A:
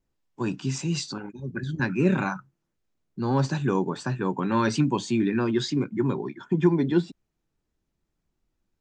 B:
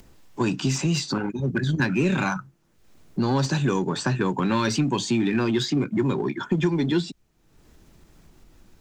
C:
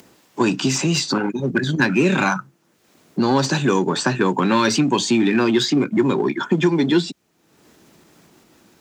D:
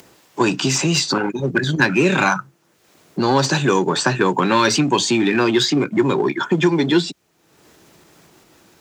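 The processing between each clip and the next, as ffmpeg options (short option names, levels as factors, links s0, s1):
-filter_complex "[0:a]acrossover=split=120|2600[s0][s1][s2];[s0]acompressor=threshold=0.00447:ratio=4[s3];[s1]acompressor=threshold=0.0224:ratio=4[s4];[s2]acompressor=threshold=0.00794:ratio=4[s5];[s3][s4][s5]amix=inputs=3:normalize=0,asplit=2[s6][s7];[s7]asoftclip=type=hard:threshold=0.0168,volume=0.447[s8];[s6][s8]amix=inputs=2:normalize=0,acompressor=mode=upward:threshold=0.00398:ratio=2.5,volume=2.82"
-af "highpass=200,volume=2.24"
-af "equalizer=f=230:w=2:g=-6.5,volume=1.41"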